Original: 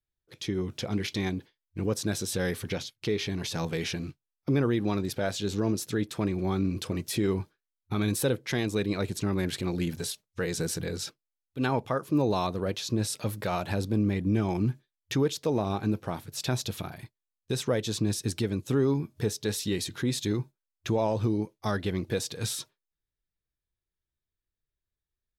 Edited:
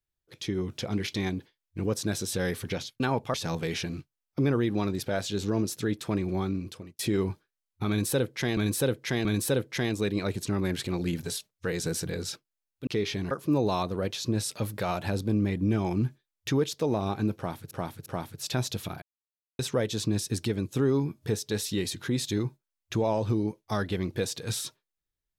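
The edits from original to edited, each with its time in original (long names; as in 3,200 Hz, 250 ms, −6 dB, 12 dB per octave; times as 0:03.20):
0:03.00–0:03.44: swap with 0:11.61–0:11.95
0:06.43–0:07.09: fade out
0:07.99–0:08.67: repeat, 3 plays
0:16.00–0:16.35: repeat, 3 plays
0:16.96–0:17.53: silence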